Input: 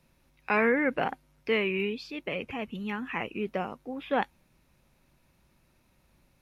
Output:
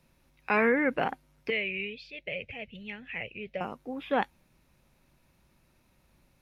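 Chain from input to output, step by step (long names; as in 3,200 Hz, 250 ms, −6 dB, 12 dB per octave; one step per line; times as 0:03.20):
0:01.50–0:03.61: drawn EQ curve 120 Hz 0 dB, 300 Hz −17 dB, 580 Hz −1 dB, 1,100 Hz −24 dB, 2,100 Hz +1 dB, 3,800 Hz −3 dB, 8,200 Hz −16 dB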